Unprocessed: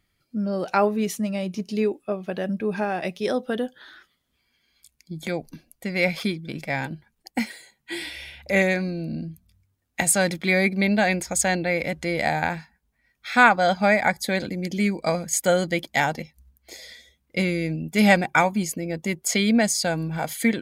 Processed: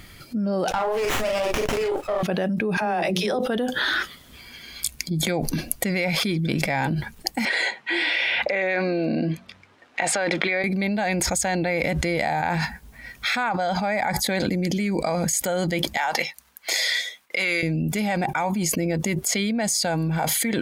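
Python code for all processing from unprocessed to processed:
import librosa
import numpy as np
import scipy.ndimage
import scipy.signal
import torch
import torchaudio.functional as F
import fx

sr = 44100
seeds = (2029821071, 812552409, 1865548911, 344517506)

y = fx.chain(x, sr, fx.highpass(hz=490.0, slope=24),
    fx.doubler(ms=41.0, db=-5),
    fx.running_max(window=9), at=(0.71, 2.23))
y = fx.chain(y, sr, fx.hum_notches(base_hz=60, count=8),
    fx.dispersion(late='lows', ms=51.0, hz=390.0), at=(2.77, 3.39))
y = fx.chain(y, sr, fx.bandpass_edges(low_hz=450.0, high_hz=2800.0),
    fx.over_compress(threshold_db=-31.0, ratio=-1.0), at=(7.45, 10.64))
y = fx.chain(y, sr, fx.gate_hold(open_db=-54.0, close_db=-63.0, hold_ms=71.0, range_db=-21, attack_ms=1.4, release_ms=100.0),
    fx.highpass(hz=1100.0, slope=12),
    fx.tilt_eq(slope=-2.0), at=(15.97, 17.63))
y = fx.dynamic_eq(y, sr, hz=850.0, q=2.7, threshold_db=-37.0, ratio=4.0, max_db=6)
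y = fx.env_flatten(y, sr, amount_pct=100)
y = y * 10.0 ** (-13.5 / 20.0)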